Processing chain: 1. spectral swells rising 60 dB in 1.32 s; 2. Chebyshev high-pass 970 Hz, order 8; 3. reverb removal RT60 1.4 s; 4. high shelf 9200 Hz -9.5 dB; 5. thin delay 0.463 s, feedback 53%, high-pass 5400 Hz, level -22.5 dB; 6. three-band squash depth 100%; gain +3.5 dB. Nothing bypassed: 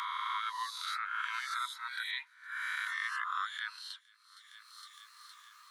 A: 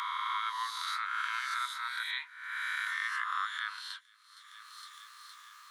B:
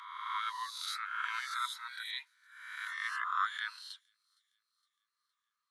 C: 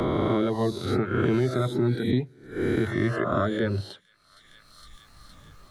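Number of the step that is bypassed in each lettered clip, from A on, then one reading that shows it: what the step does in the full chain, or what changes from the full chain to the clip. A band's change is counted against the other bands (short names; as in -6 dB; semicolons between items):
3, loudness change +2.0 LU; 6, crest factor change +3.0 dB; 2, crest factor change -3.5 dB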